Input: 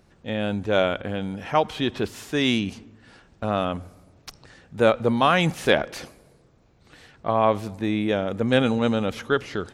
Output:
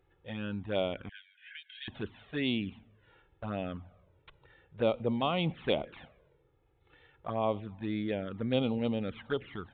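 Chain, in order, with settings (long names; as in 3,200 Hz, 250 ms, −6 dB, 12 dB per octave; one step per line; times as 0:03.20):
0:01.09–0:01.88: Chebyshev high-pass filter 1,500 Hz, order 10
flanger swept by the level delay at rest 2.4 ms, full sweep at −17 dBFS
downsampling to 8,000 Hz
level −8.5 dB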